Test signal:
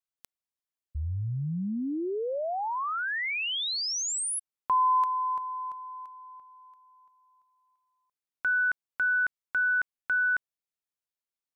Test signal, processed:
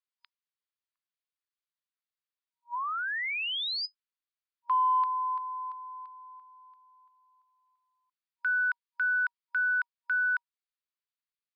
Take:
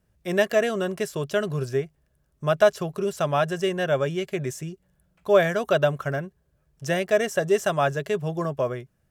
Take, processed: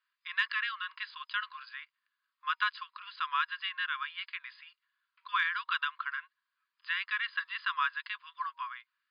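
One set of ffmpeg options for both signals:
ffmpeg -i in.wav -af "afftfilt=real='re*between(b*sr/4096,950,5000)':imag='im*between(b*sr/4096,950,5000)':win_size=4096:overlap=0.75,acontrast=64,volume=-8dB" out.wav

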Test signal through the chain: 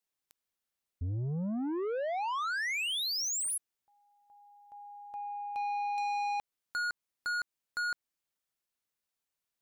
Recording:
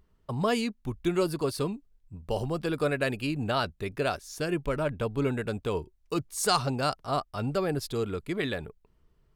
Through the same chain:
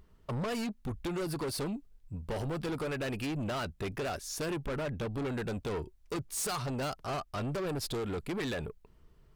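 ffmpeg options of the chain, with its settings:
ffmpeg -i in.wav -af "acompressor=threshold=-28dB:ratio=6,asoftclip=type=tanh:threshold=-36.5dB,volume=5dB" out.wav

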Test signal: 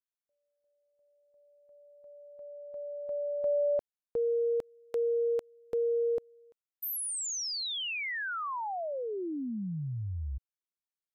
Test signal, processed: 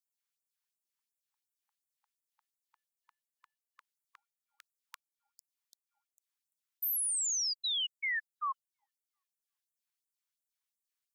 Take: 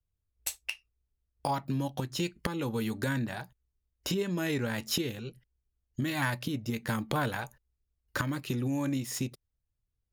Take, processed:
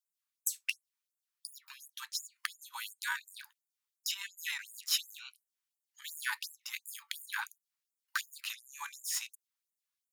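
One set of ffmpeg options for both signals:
ffmpeg -i in.wav -filter_complex "[0:a]highpass=320,asplit=2[link_01][link_02];[link_02]acompressor=threshold=-42dB:ratio=6:attack=8.1:release=56,volume=-2dB[link_03];[link_01][link_03]amix=inputs=2:normalize=0,afftfilt=real='re*gte(b*sr/1024,800*pow(7000/800,0.5+0.5*sin(2*PI*2.8*pts/sr)))':imag='im*gte(b*sr/1024,800*pow(7000/800,0.5+0.5*sin(2*PI*2.8*pts/sr)))':win_size=1024:overlap=0.75" out.wav

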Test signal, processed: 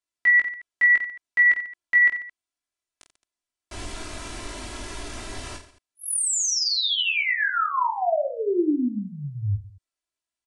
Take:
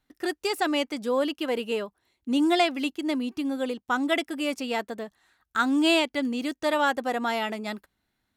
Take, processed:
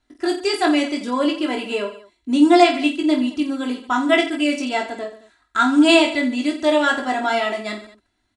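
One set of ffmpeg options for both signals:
ffmpeg -i in.wav -af "aresample=22050,aresample=44100,aecho=1:1:3:0.76,aecho=1:1:20|48|87.2|142.1|218.9:0.631|0.398|0.251|0.158|0.1,volume=2.5dB" out.wav

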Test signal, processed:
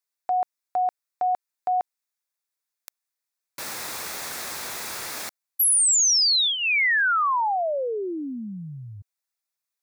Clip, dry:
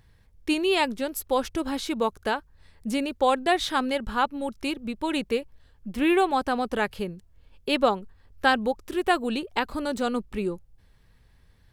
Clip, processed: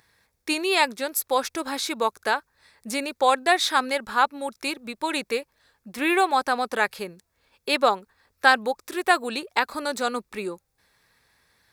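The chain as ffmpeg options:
ffmpeg -i in.wav -af "highpass=frequency=1100:poles=1,equalizer=frequency=3000:width_type=o:width=0.24:gain=-10.5,volume=7.5dB" out.wav

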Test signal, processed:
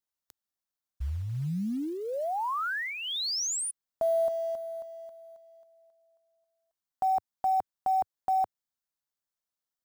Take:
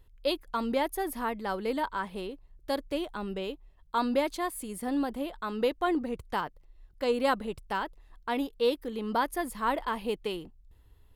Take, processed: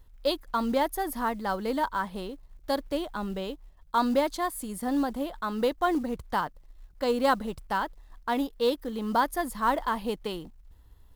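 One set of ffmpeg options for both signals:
ffmpeg -i in.wav -af "equalizer=frequency=100:width_type=o:width=0.67:gain=-4,equalizer=frequency=400:width_type=o:width=0.67:gain=-6,equalizer=frequency=2500:width_type=o:width=0.67:gain=-8,equalizer=frequency=10000:width_type=o:width=0.67:gain=-3,acrusher=bits=7:mode=log:mix=0:aa=0.000001,volume=4.5dB" out.wav

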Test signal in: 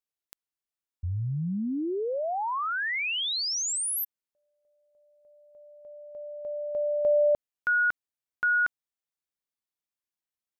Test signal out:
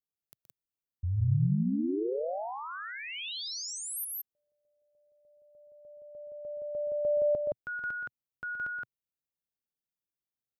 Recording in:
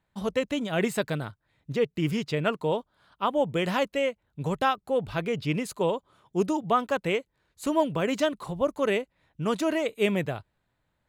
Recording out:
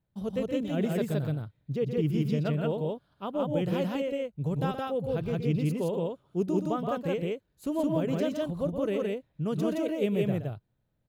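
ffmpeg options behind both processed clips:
ffmpeg -i in.wav -filter_complex "[0:a]equalizer=frequency=125:width_type=o:width=1:gain=6,equalizer=frequency=1000:width_type=o:width=1:gain=-8,equalizer=frequency=2000:width_type=o:width=1:gain=-9,equalizer=frequency=4000:width_type=o:width=1:gain=-4,equalizer=frequency=8000:width_type=o:width=1:gain=-9,asplit=2[link_01][link_02];[link_02]aecho=0:1:122.4|169.1:0.355|0.891[link_03];[link_01][link_03]amix=inputs=2:normalize=0,volume=-3.5dB" out.wav

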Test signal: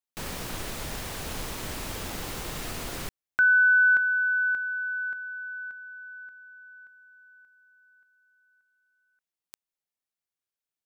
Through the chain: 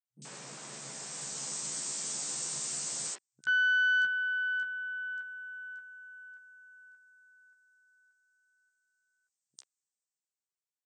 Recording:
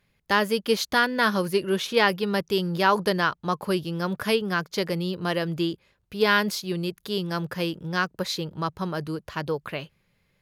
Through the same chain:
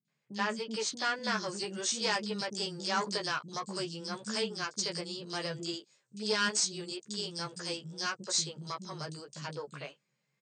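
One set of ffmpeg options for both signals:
ffmpeg -i in.wav -filter_complex "[0:a]acrossover=split=310|3400[link_01][link_02][link_03];[link_03]adelay=50[link_04];[link_02]adelay=80[link_05];[link_01][link_05][link_04]amix=inputs=3:normalize=0,acrossover=split=6200[link_06][link_07];[link_06]aeval=exprs='0.473*(cos(1*acos(clip(val(0)/0.473,-1,1)))-cos(1*PI/2))+0.106*(cos(2*acos(clip(val(0)/0.473,-1,1)))-cos(2*PI/2))+0.15*(cos(3*acos(clip(val(0)/0.473,-1,1)))-cos(3*PI/2))+0.0299*(cos(5*acos(clip(val(0)/0.473,-1,1)))-cos(5*PI/2))':channel_layout=same[link_08];[link_07]dynaudnorm=framelen=230:gausssize=11:maxgain=16dB[link_09];[link_08][link_09]amix=inputs=2:normalize=0,asoftclip=type=tanh:threshold=-18dB,asplit=2[link_10][link_11];[link_11]adelay=14,volume=-4.5dB[link_12];[link_10][link_12]amix=inputs=2:normalize=0,afftfilt=real='re*between(b*sr/4096,120,8700)':imag='im*between(b*sr/4096,120,8700)':win_size=4096:overlap=0.75,volume=-2.5dB" out.wav

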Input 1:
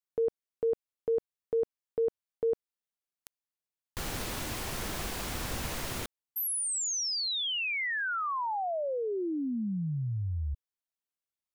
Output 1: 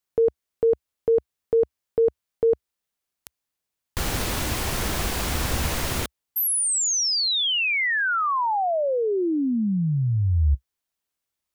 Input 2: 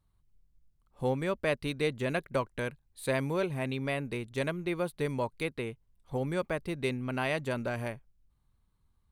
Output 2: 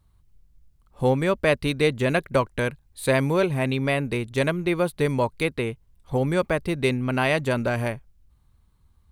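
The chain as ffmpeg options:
ffmpeg -i in.wav -af "equalizer=frequency=66:width_type=o:width=0.85:gain=6,volume=9dB" out.wav

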